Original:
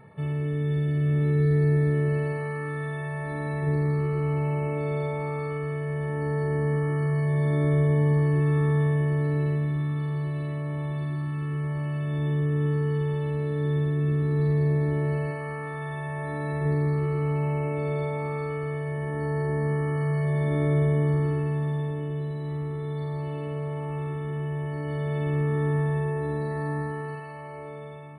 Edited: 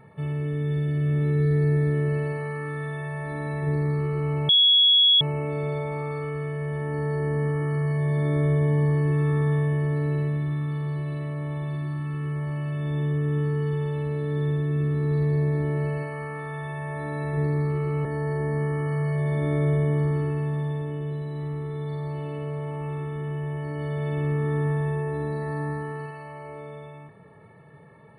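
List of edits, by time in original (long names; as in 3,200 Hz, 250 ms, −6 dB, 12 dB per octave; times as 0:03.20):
0:04.49: insert tone 3,350 Hz −14 dBFS 0.72 s
0:17.33–0:19.14: remove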